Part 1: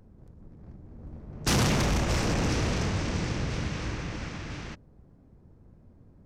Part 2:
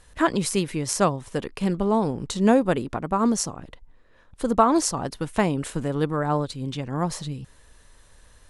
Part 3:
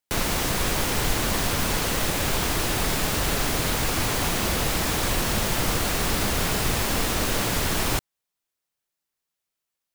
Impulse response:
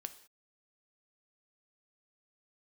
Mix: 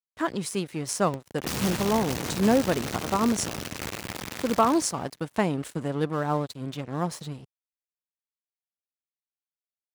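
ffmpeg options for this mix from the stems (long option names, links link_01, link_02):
-filter_complex "[0:a]acompressor=threshold=-36dB:ratio=5,acrusher=bits=3:dc=4:mix=0:aa=0.000001,volume=2dB,asplit=2[link_01][link_02];[link_02]volume=-9dB[link_03];[1:a]acontrast=73,aeval=exprs='sgn(val(0))*max(abs(val(0))-0.0237,0)':channel_layout=same,volume=-12dB[link_04];[link_03]aecho=0:1:169|338|507|676:1|0.29|0.0841|0.0244[link_05];[link_01][link_04][link_05]amix=inputs=3:normalize=0,highpass=81,dynaudnorm=framelen=290:gausssize=5:maxgain=4dB"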